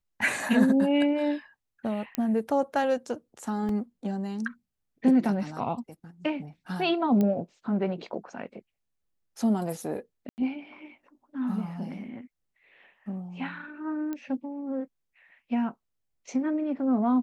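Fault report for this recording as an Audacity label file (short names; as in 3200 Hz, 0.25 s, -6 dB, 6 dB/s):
2.150000	2.150000	pop -14 dBFS
3.690000	3.690000	gap 2.7 ms
7.210000	7.210000	pop -16 dBFS
10.290000	10.380000	gap 89 ms
14.130000	14.130000	pop -22 dBFS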